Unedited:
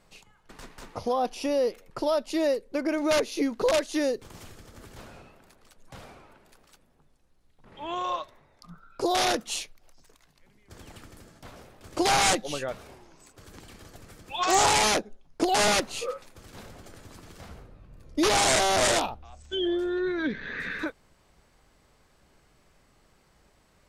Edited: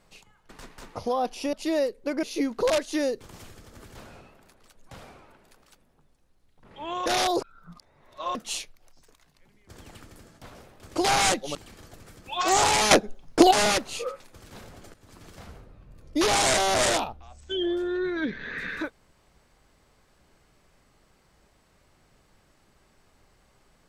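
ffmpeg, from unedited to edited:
-filter_complex "[0:a]asplit=9[a][b][c][d][e][f][g][h][i];[a]atrim=end=1.532[j];[b]atrim=start=2.208:end=2.912[k];[c]atrim=start=3.238:end=8.072[l];[d]atrim=start=8.068:end=9.362,asetpts=PTS-STARTPTS,areverse[m];[e]atrim=start=9.358:end=12.562[n];[f]atrim=start=13.568:end=14.932[o];[g]atrim=start=14.928:end=15.532,asetpts=PTS-STARTPTS,volume=9.5dB[p];[h]atrim=start=15.528:end=16.96,asetpts=PTS-STARTPTS,afade=t=out:st=1.428:d=0.004:c=hsin:silence=0.158489[q];[i]atrim=start=16.96,asetpts=PTS-STARTPTS,afade=t=in:d=0.3:silence=0.158489[r];[j][k]acrossfade=d=0.004:c1=hsin:c2=hsin[s];[s][l]acrossfade=d=0.004:c1=hsin:c2=hsin[t];[t][m]acrossfade=d=0.004:c1=hsin:c2=hsin[u];[u][n]acrossfade=d=0.004:c1=hsin:c2=hsin[v];[v][o]acrossfade=d=0.004:c1=hsin:c2=hsin[w];[w][p]acrossfade=d=0.004:c1=hsin:c2=hsin[x];[q][r]concat=n=2:v=0:a=1[y];[x][y]acrossfade=d=0.004:c1=hsin:c2=hsin"

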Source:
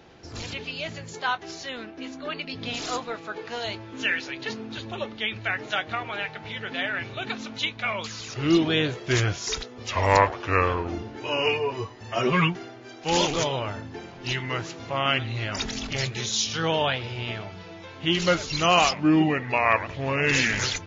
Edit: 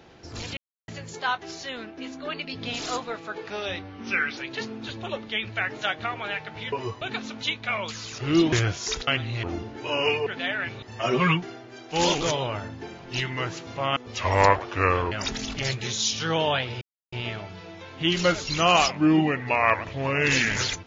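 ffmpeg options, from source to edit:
-filter_complex "[0:a]asplit=15[a][b][c][d][e][f][g][h][i][j][k][l][m][n][o];[a]atrim=end=0.57,asetpts=PTS-STARTPTS,afade=t=out:st=0.566:d=0.004:c=hsin[p];[b]atrim=start=0.57:end=0.88,asetpts=PTS-STARTPTS,volume=0[q];[c]atrim=start=0.88:end=3.504,asetpts=PTS-STARTPTS,afade=t=in:d=0.004:c=hsin[r];[d]atrim=start=3.5:end=4.26,asetpts=PTS-STARTPTS,asetrate=38367,aresample=44100,atrim=end_sample=38524,asetpts=PTS-STARTPTS[s];[e]atrim=start=4.256:end=6.612[t];[f]atrim=start=11.658:end=11.952[u];[g]atrim=start=7.168:end=8.682[v];[h]atrim=start=9.128:end=9.682[w];[i]atrim=start=15.088:end=15.452[x];[j]atrim=start=10.828:end=11.662[y];[k]atrim=start=6.608:end=7.172[z];[l]atrim=start=11.948:end=15.092[aa];[m]atrim=start=9.678:end=10.832[ab];[n]atrim=start=15.448:end=17.15,asetpts=PTS-STARTPTS,afade=t=out:st=1.698:d=0.004:c=hsin,apad=pad_dur=0.31[ac];[o]atrim=start=17.15,asetpts=PTS-STARTPTS,afade=t=in:d=0.004:c=hsin[ad];[p][q][r]concat=n=3:v=0:a=1[ae];[ae][s]acrossfade=d=0.004:c1=hsin:c2=hsin[af];[af][t]acrossfade=d=0.004:c1=hsin:c2=hsin[ag];[ag][u]acrossfade=d=0.004:c1=hsin:c2=hsin[ah];[ah][v]acrossfade=d=0.004:c1=hsin:c2=hsin[ai];[ai][w]acrossfade=d=0.004:c1=hsin:c2=hsin[aj];[aj][x]acrossfade=d=0.004:c1=hsin:c2=hsin[ak];[ak][y]acrossfade=d=0.004:c1=hsin:c2=hsin[al];[al][z]acrossfade=d=0.004:c1=hsin:c2=hsin[am];[am][aa]acrossfade=d=0.004:c1=hsin:c2=hsin[an];[an][ab]acrossfade=d=0.004:c1=hsin:c2=hsin[ao];[ac][ad]concat=n=2:v=0:a=1[ap];[ao][ap]acrossfade=d=0.004:c1=hsin:c2=hsin"

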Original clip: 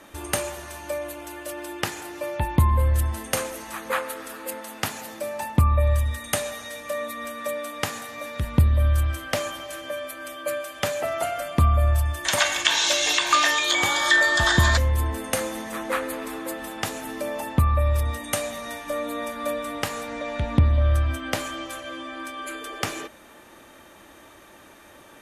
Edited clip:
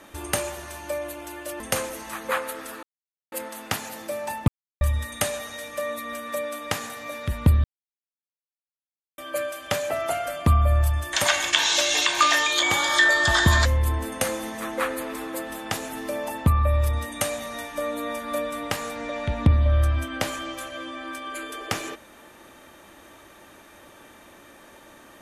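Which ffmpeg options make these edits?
-filter_complex "[0:a]asplit=7[a][b][c][d][e][f][g];[a]atrim=end=1.602[h];[b]atrim=start=3.208:end=4.44,asetpts=PTS-STARTPTS,afade=t=out:st=1.228:d=0.004:c=hsin,apad=pad_dur=0.49[i];[c]atrim=start=4.44:end=5.6,asetpts=PTS-STARTPTS,afade=t=in:d=0.004:c=hsin,afade=t=out:st=1.156:d=0.004:c=hsin[j];[d]atrim=start=5.6:end=5.93,asetpts=PTS-STARTPTS,volume=0[k];[e]atrim=start=5.93:end=8.76,asetpts=PTS-STARTPTS,afade=t=in:d=0.004:c=hsin,afade=t=out:st=2.826:d=0.004:c=hsin[l];[f]atrim=start=8.76:end=10.3,asetpts=PTS-STARTPTS,volume=0[m];[g]atrim=start=10.3,asetpts=PTS-STARTPTS,afade=t=in:d=0.004:c=hsin[n];[i][j][k][l][m][n]concat=n=6:v=0:a=1[o];[h][o]acrossfade=d=0.004:c1=hsin:c2=hsin"

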